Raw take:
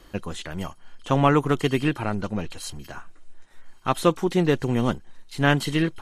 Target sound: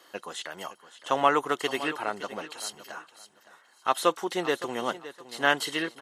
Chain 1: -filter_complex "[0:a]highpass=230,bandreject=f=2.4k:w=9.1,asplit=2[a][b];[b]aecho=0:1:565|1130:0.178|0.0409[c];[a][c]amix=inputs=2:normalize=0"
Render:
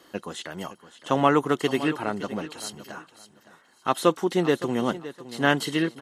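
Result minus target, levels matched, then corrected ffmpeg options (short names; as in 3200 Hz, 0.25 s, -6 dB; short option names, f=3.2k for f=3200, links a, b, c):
250 Hz band +6.5 dB
-filter_complex "[0:a]highpass=550,bandreject=f=2.4k:w=9.1,asplit=2[a][b];[b]aecho=0:1:565|1130:0.178|0.0409[c];[a][c]amix=inputs=2:normalize=0"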